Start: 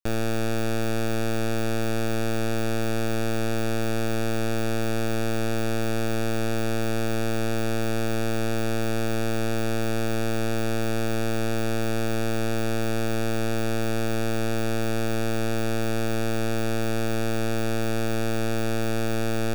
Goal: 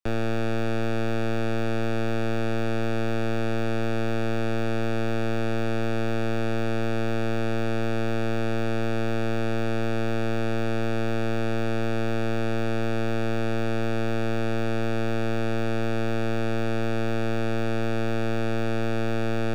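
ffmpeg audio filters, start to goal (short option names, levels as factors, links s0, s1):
-filter_complex "[0:a]highshelf=f=11000:g=-9,acrossover=split=210|1000|4200[s0][s1][s2][s3];[s3]alimiter=level_in=6.68:limit=0.0631:level=0:latency=1,volume=0.15[s4];[s0][s1][s2][s4]amix=inputs=4:normalize=0"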